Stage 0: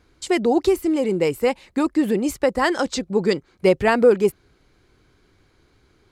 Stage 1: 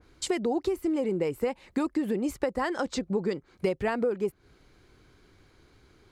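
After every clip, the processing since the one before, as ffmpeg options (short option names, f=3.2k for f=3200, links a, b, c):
-af "acompressor=threshold=-25dB:ratio=6,adynamicequalizer=threshold=0.00398:dfrequency=2300:dqfactor=0.7:tfrequency=2300:tqfactor=0.7:attack=5:release=100:ratio=0.375:range=4:mode=cutabove:tftype=highshelf"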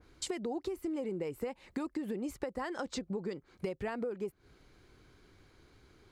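-af "acompressor=threshold=-34dB:ratio=2.5,volume=-2.5dB"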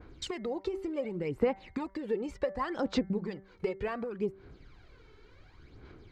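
-af "lowpass=4.1k,aphaser=in_gain=1:out_gain=1:delay=2.3:decay=0.6:speed=0.68:type=sinusoidal,bandreject=f=193.5:t=h:w=4,bandreject=f=387:t=h:w=4,bandreject=f=580.5:t=h:w=4,bandreject=f=774:t=h:w=4,bandreject=f=967.5:t=h:w=4,bandreject=f=1.161k:t=h:w=4,bandreject=f=1.3545k:t=h:w=4,bandreject=f=1.548k:t=h:w=4,bandreject=f=1.7415k:t=h:w=4,bandreject=f=1.935k:t=h:w=4,bandreject=f=2.1285k:t=h:w=4,volume=2.5dB"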